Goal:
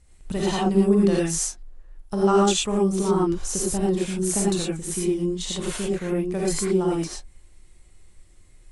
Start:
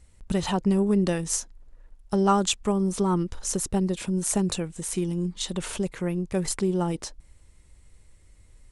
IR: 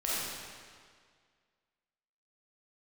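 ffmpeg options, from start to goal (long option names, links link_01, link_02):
-filter_complex "[1:a]atrim=start_sample=2205,atrim=end_sample=3087,asetrate=25137,aresample=44100[link_01];[0:a][link_01]afir=irnorm=-1:irlink=0,volume=-4.5dB"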